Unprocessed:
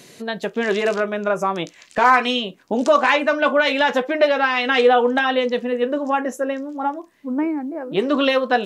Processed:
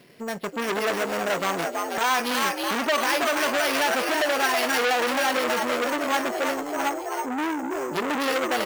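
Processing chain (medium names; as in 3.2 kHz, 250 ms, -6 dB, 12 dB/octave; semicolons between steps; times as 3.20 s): companding laws mixed up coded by A; on a send: frequency-shifting echo 325 ms, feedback 60%, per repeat +72 Hz, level -6.5 dB; on the sum: careless resampling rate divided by 6×, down filtered, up hold; peak limiter -10 dBFS, peak gain reduction 7 dB; transformer saturation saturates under 2.1 kHz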